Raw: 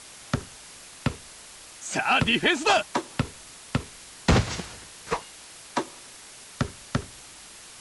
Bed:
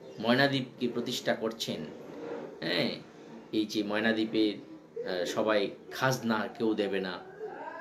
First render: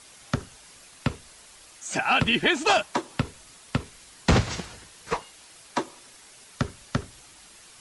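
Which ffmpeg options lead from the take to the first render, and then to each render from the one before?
-af "afftdn=nr=6:nf=-46"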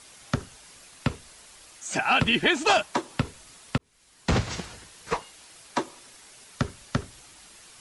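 -filter_complex "[0:a]asplit=2[a][b];[a]atrim=end=3.78,asetpts=PTS-STARTPTS,afade=t=out:st=3.776:d=0.004:c=hsin[c];[b]atrim=start=3.78,asetpts=PTS-STARTPTS,afade=t=in:d=0.87[d];[c][d]concat=n=2:v=0:a=1"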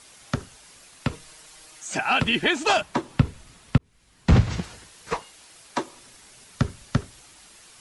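-filter_complex "[0:a]asettb=1/sr,asplit=3[a][b][c];[a]atrim=end=1.124[d];[b]atrim=start=1.12:end=1.85,asetpts=PTS-STARTPTS,afade=t=in:d=0.004:c=qsin,afade=t=out:st=0.726:d=0.004:c=qsin,aecho=1:1:6.4:0.74,atrim=end_sample=32193[e];[c]atrim=start=1.846[f];[d][e]acrossfade=d=0.004:c1=hsin:c2=qsin[g];[g][f]acrossfade=d=0.004:c1=qsin:c2=hsin,asettb=1/sr,asplit=3[h][i][j];[h]atrim=end=2.814[k];[i]atrim=start=2.81:end=4.63,asetpts=PTS-STARTPTS,afade=t=in:d=0.004:c=qsin,afade=t=out:st=1.816:d=0.004:c=qsin,bass=f=250:g=10,treble=f=4k:g=-5[l];[j]atrim=start=4.626[m];[k][l]acrossfade=d=0.004:c1=hsin:c2=qsin[n];[n][m]acrossfade=d=0.004:c1=qsin:c2=hsin,asettb=1/sr,asplit=3[o][p][q];[o]atrim=end=5.934[r];[p]atrim=start=5.93:end=6.99,asetpts=PTS-STARTPTS,afade=t=in:d=0.004:c=qsin,afade=t=out:st=1.056:d=0.004:c=qsin,bass=f=250:g=6,treble=f=4k:g=0[s];[q]atrim=start=6.986[t];[r][s]acrossfade=d=0.004:c1=hsin:c2=qsin[u];[u][t]acrossfade=d=0.004:c1=qsin:c2=hsin"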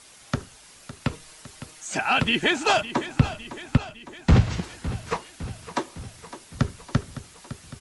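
-af "aecho=1:1:558|1116|1674|2232|2790|3348:0.2|0.12|0.0718|0.0431|0.0259|0.0155"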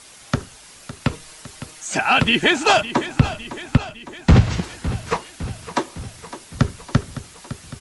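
-af "volume=5.5dB,alimiter=limit=-3dB:level=0:latency=1"

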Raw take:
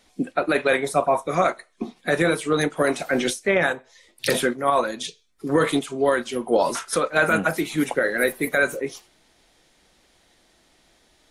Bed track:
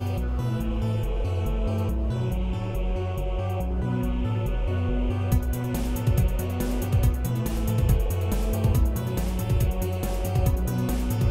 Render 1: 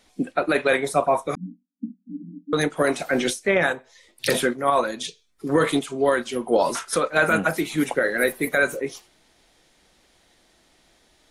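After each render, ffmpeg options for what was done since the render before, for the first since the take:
-filter_complex "[0:a]asettb=1/sr,asplit=3[a][b][c];[a]atrim=end=1.354[d];[b]atrim=start=1.35:end=2.53,asetpts=PTS-STARTPTS,afade=t=in:d=0.004:c=qsin,afade=t=out:st=1.176:d=0.004:c=qsin,asuperpass=centerf=230:order=20:qfactor=1.9[e];[c]atrim=start=2.526[f];[d][e]acrossfade=d=0.004:c1=hsin:c2=qsin[g];[g][f]acrossfade=d=0.004:c1=qsin:c2=hsin"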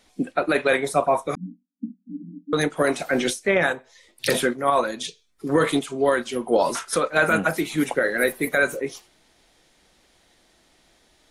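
-af anull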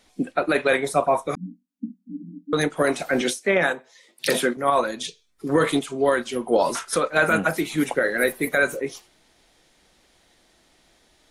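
-filter_complex "[0:a]asettb=1/sr,asplit=3[a][b][c];[a]atrim=end=3.214[d];[b]atrim=start=3.21:end=4.57,asetpts=PTS-STARTPTS,afade=t=in:d=0.004:c=qsin,afade=t=out:st=1.356:d=0.004:c=qsin,highpass=f=150:w=0.5412,highpass=f=150:w=1.3066[e];[c]atrim=start=4.566[f];[d][e]acrossfade=d=0.004:c1=hsin:c2=qsin[g];[g][f]acrossfade=d=0.004:c1=qsin:c2=hsin"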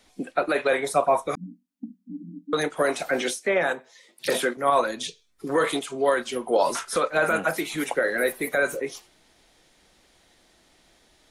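-filter_complex "[0:a]acrossover=split=380|1100[a][b][c];[a]acompressor=threshold=-35dB:ratio=6[d];[c]alimiter=limit=-20.5dB:level=0:latency=1:release=12[e];[d][b][e]amix=inputs=3:normalize=0"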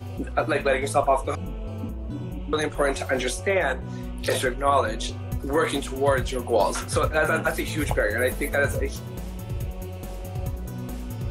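-filter_complex "[1:a]volume=-7.5dB[a];[0:a][a]amix=inputs=2:normalize=0"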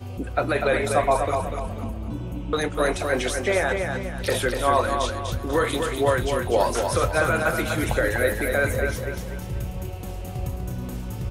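-af "aecho=1:1:245|490|735|980|1225:0.531|0.212|0.0849|0.034|0.0136"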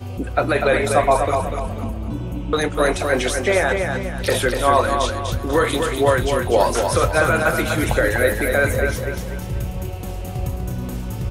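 -af "volume=4.5dB"

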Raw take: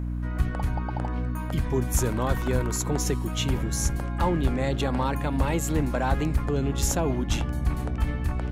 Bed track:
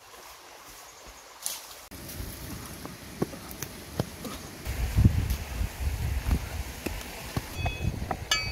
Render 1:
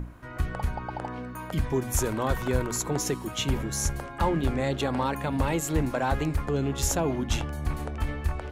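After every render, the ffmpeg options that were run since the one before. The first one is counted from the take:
-af "bandreject=f=60:t=h:w=6,bandreject=f=120:t=h:w=6,bandreject=f=180:t=h:w=6,bandreject=f=240:t=h:w=6,bandreject=f=300:t=h:w=6"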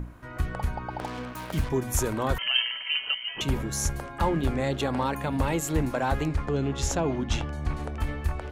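-filter_complex "[0:a]asettb=1/sr,asplit=3[a][b][c];[a]atrim=end=0.994[d];[b]atrim=start=0.99:end=1.69,asetpts=PTS-STARTPTS,afade=t=in:d=0.004:c=qsin,afade=t=out:st=0.696:d=0.004:c=qsin,acrusher=bits=5:mix=0:aa=0.5[e];[c]atrim=start=1.686[f];[d][e]acrossfade=d=0.004:c1=hsin:c2=qsin[g];[g][f]acrossfade=d=0.004:c1=qsin:c2=hsin,asettb=1/sr,asplit=3[h][i][j];[h]atrim=end=2.384[k];[i]atrim=start=2.38:end=3.41,asetpts=PTS-STARTPTS,afade=t=in:d=0.004:c=qsin,afade=t=out:st=1.026:d=0.004:c=qsin,lowpass=f=2.7k:t=q:w=0.5098,lowpass=f=2.7k:t=q:w=0.6013,lowpass=f=2.7k:t=q:w=0.9,lowpass=f=2.7k:t=q:w=2.563,afreqshift=-3200[l];[j]atrim=start=3.406[m];[k][l]acrossfade=d=0.004:c1=hsin:c2=qsin[n];[n][m]acrossfade=d=0.004:c1=qsin:c2=hsin,asettb=1/sr,asplit=3[o][p][q];[o]atrim=end=6.284[r];[p]atrim=start=6.28:end=7.84,asetpts=PTS-STARTPTS,afade=t=in:d=0.004:c=qsin,afade=t=out:st=1.556:d=0.004:c=qsin,lowpass=6.7k[s];[q]atrim=start=7.836[t];[r][s]acrossfade=d=0.004:c1=hsin:c2=qsin[u];[u][t]acrossfade=d=0.004:c1=qsin:c2=hsin"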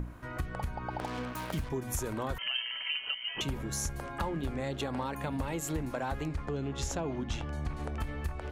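-af "acompressor=threshold=-32dB:ratio=4"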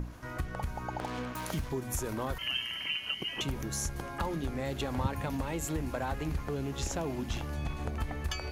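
-filter_complex "[1:a]volume=-13dB[a];[0:a][a]amix=inputs=2:normalize=0"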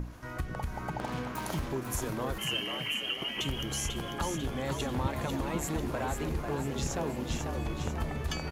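-filter_complex "[0:a]asplit=7[a][b][c][d][e][f][g];[b]adelay=494,afreqshift=85,volume=-6dB[h];[c]adelay=988,afreqshift=170,volume=-12.2dB[i];[d]adelay=1482,afreqshift=255,volume=-18.4dB[j];[e]adelay=1976,afreqshift=340,volume=-24.6dB[k];[f]adelay=2470,afreqshift=425,volume=-30.8dB[l];[g]adelay=2964,afreqshift=510,volume=-37dB[m];[a][h][i][j][k][l][m]amix=inputs=7:normalize=0"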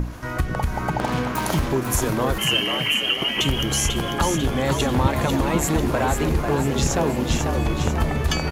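-af "volume=12dB"

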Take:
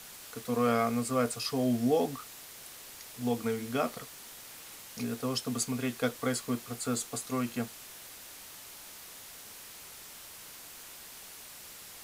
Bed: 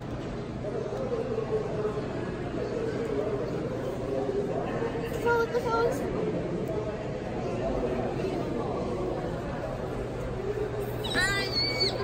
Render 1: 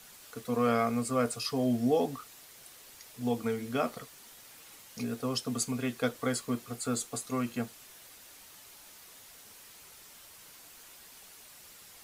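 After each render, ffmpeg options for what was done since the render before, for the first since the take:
-af "afftdn=nr=6:nf=-49"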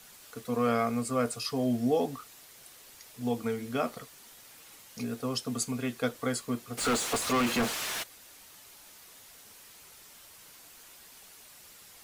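-filter_complex "[0:a]asplit=3[a][b][c];[a]afade=t=out:st=6.77:d=0.02[d];[b]asplit=2[e][f];[f]highpass=f=720:p=1,volume=35dB,asoftclip=type=tanh:threshold=-19.5dB[g];[e][g]amix=inputs=2:normalize=0,lowpass=f=3.4k:p=1,volume=-6dB,afade=t=in:st=6.77:d=0.02,afade=t=out:st=8.02:d=0.02[h];[c]afade=t=in:st=8.02:d=0.02[i];[d][h][i]amix=inputs=3:normalize=0"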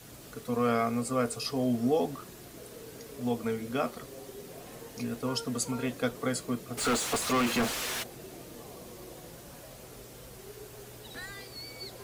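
-filter_complex "[1:a]volume=-16.5dB[a];[0:a][a]amix=inputs=2:normalize=0"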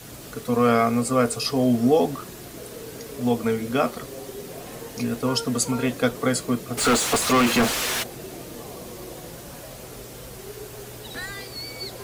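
-af "volume=8.5dB"

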